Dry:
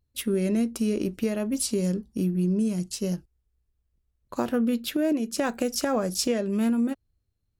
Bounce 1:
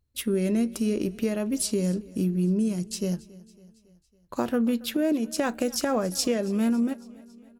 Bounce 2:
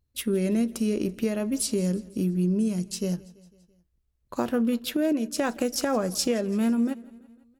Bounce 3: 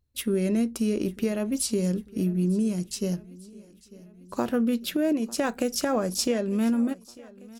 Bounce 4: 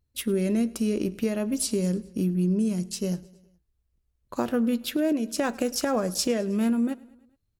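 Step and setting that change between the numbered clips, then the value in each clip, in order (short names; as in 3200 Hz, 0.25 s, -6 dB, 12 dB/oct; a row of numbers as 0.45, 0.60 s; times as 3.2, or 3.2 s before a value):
feedback echo, time: 0.277, 0.167, 0.897, 0.105 s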